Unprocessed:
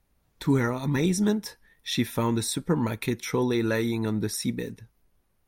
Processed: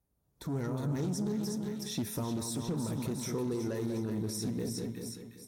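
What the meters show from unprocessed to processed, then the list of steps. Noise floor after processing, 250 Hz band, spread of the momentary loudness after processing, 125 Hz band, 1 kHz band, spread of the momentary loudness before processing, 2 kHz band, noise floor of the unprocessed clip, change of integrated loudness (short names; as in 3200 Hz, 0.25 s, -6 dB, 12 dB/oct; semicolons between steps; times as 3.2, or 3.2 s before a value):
-76 dBFS, -7.5 dB, 5 LU, -6.5 dB, -11.0 dB, 7 LU, -16.5 dB, -70 dBFS, -8.5 dB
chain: soft clip -23 dBFS, distortion -12 dB; split-band echo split 1600 Hz, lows 0.194 s, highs 0.362 s, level -7 dB; dynamic EQ 5800 Hz, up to +5 dB, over -48 dBFS, Q 1.7; limiter -27 dBFS, peak gain reduction 9 dB; HPF 51 Hz; bell 2400 Hz -13 dB 2.1 oct; compressor 2:1, threshold -36 dBFS, peak gain reduction 4 dB; resonator 140 Hz, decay 0.82 s, harmonics odd, mix 60%; AGC gain up to 11 dB; Doppler distortion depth 0.14 ms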